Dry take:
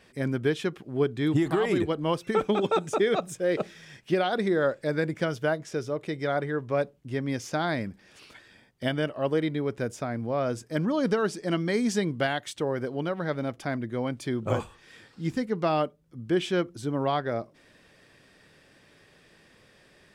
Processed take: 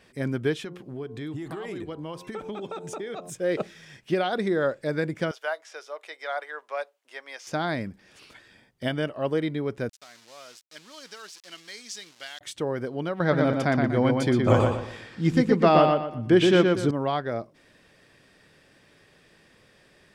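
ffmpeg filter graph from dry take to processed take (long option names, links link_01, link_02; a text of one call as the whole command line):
ffmpeg -i in.wav -filter_complex "[0:a]asettb=1/sr,asplit=3[link_01][link_02][link_03];[link_01]atrim=end=0.574[link_04];[link_02]atrim=start=0.57:end=3.3,asetpts=PTS-STARTPTS,afade=type=in:duration=0.004:curve=qsin,afade=type=out:start_time=2.726:duration=0.004:curve=qsin,bandreject=frequency=88.76:width_type=h:width=4,bandreject=frequency=177.52:width_type=h:width=4,bandreject=frequency=266.28:width_type=h:width=4,bandreject=frequency=355.04:width_type=h:width=4,bandreject=frequency=443.8:width_type=h:width=4,bandreject=frequency=532.56:width_type=h:width=4,bandreject=frequency=621.32:width_type=h:width=4,bandreject=frequency=710.08:width_type=h:width=4,bandreject=frequency=798.84:width_type=h:width=4,bandreject=frequency=887.6:width_type=h:width=4,bandreject=frequency=976.36:width_type=h:width=4,bandreject=frequency=1065.12:width_type=h:width=4,acompressor=threshold=-33dB:ratio=4:attack=3.2:release=140:knee=1:detection=peak[link_05];[link_03]atrim=start=3.296[link_06];[link_04][link_05]acrossfade=duration=0.004:curve1=hsin:curve2=qsin[link_07];[link_07][link_06]acrossfade=duration=0.004:curve1=qsin:curve2=hsin,asettb=1/sr,asplit=3[link_08][link_09][link_10];[link_08]atrim=end=5.314[link_11];[link_09]atrim=start=5.31:end=7.47,asetpts=PTS-STARTPTS,afade=type=in:duration=0.004:curve=qsin,afade=type=out:start_time=2.156:duration=0.004:curve=qsin,acrossover=split=5300[link_12][link_13];[link_13]acompressor=threshold=-55dB:ratio=4:attack=1:release=60[link_14];[link_12][link_14]amix=inputs=2:normalize=0,highpass=frequency=650:width=0.5412,highpass=frequency=650:width=1.3066[link_15];[link_10]atrim=start=7.466[link_16];[link_11][link_15]acrossfade=duration=0.004:curve1=hsin:curve2=qsin[link_17];[link_17][link_16]acrossfade=duration=0.004:curve1=qsin:curve2=hsin,asettb=1/sr,asplit=3[link_18][link_19][link_20];[link_18]atrim=end=9.894[link_21];[link_19]atrim=start=9.89:end=12.41,asetpts=PTS-STARTPTS,afade=type=in:duration=0.004:curve=qsin,afade=type=out:start_time=2.516:duration=0.004:curve=qsin,aeval=exprs='val(0)*gte(abs(val(0)),0.0158)':channel_layout=same,bandpass=frequency=5200:width_type=q:width=1.2[link_22];[link_20]atrim=start=12.406[link_23];[link_21][link_22]acrossfade=duration=0.004:curve1=hsin:curve2=qsin[link_24];[link_24][link_23]acrossfade=duration=0.004:curve1=qsin:curve2=hsin,asettb=1/sr,asplit=3[link_25][link_26][link_27];[link_25]atrim=end=13.204[link_28];[link_26]atrim=start=13.2:end=16.91,asetpts=PTS-STARTPTS,afade=type=in:duration=0.004:curve=qsin,afade=type=out:start_time=3.706:duration=0.004:curve=qsin,highshelf=frequency=9000:gain=-8.5,acontrast=80,asplit=2[link_29][link_30];[link_30]adelay=120,lowpass=frequency=4400:poles=1,volume=-3.5dB,asplit=2[link_31][link_32];[link_32]adelay=120,lowpass=frequency=4400:poles=1,volume=0.34,asplit=2[link_33][link_34];[link_34]adelay=120,lowpass=frequency=4400:poles=1,volume=0.34,asplit=2[link_35][link_36];[link_36]adelay=120,lowpass=frequency=4400:poles=1,volume=0.34[link_37];[link_29][link_31][link_33][link_35][link_37]amix=inputs=5:normalize=0,atrim=end_sample=163611[link_38];[link_27]atrim=start=16.906[link_39];[link_28][link_38]acrossfade=duration=0.004:curve1=hsin:curve2=qsin[link_40];[link_40][link_39]acrossfade=duration=0.004:curve1=qsin:curve2=hsin" out.wav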